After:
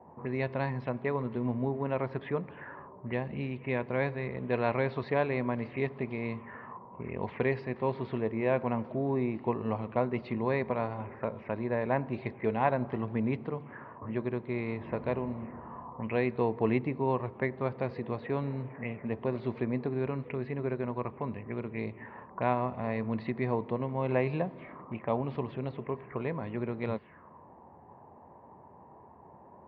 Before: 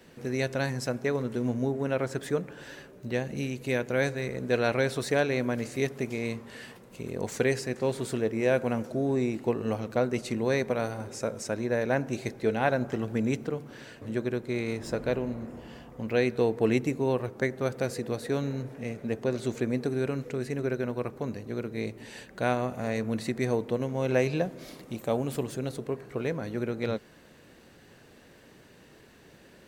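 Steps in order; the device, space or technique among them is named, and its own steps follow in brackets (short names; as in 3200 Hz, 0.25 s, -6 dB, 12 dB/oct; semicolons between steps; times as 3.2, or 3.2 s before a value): envelope filter bass rig (envelope low-pass 760–4600 Hz up, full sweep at -28 dBFS; speaker cabinet 79–2200 Hz, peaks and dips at 83 Hz +7 dB, 300 Hz -4 dB, 490 Hz -4 dB, 1000 Hz +9 dB, 1500 Hz -9 dB); gain -1.5 dB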